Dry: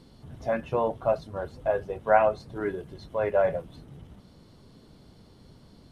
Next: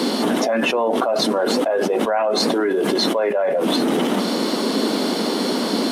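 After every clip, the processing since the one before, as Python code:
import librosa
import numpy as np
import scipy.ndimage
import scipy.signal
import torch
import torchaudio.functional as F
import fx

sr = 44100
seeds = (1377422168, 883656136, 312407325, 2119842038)

y = scipy.signal.sosfilt(scipy.signal.butter(8, 220.0, 'highpass', fs=sr, output='sos'), x)
y = fx.env_flatten(y, sr, amount_pct=100)
y = y * librosa.db_to_amplitude(-3.0)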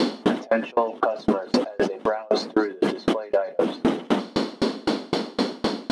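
y = fx.air_absorb(x, sr, metres=90.0)
y = fx.echo_thinned(y, sr, ms=228, feedback_pct=67, hz=420.0, wet_db=-21)
y = fx.tremolo_decay(y, sr, direction='decaying', hz=3.9, depth_db=33)
y = y * librosa.db_to_amplitude(4.5)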